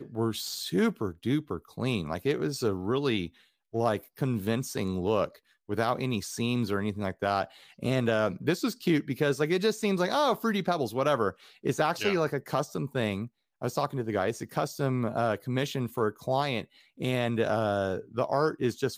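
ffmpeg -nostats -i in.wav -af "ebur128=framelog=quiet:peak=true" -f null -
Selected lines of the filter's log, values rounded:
Integrated loudness:
  I:         -29.5 LUFS
  Threshold: -39.6 LUFS
Loudness range:
  LRA:         3.3 LU
  Threshold: -49.6 LUFS
  LRA low:   -30.9 LUFS
  LRA high:  -27.6 LUFS
True peak:
  Peak:      -12.2 dBFS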